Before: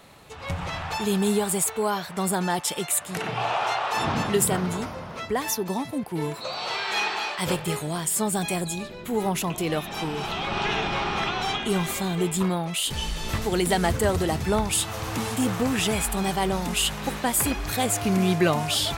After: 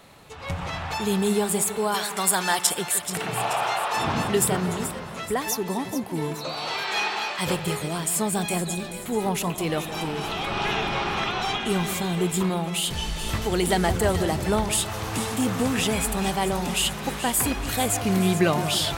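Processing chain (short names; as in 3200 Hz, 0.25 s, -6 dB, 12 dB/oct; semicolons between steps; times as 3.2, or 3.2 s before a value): 1.94–2.67 tilt shelf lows -8.5 dB, about 660 Hz; split-band echo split 1500 Hz, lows 0.165 s, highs 0.431 s, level -11 dB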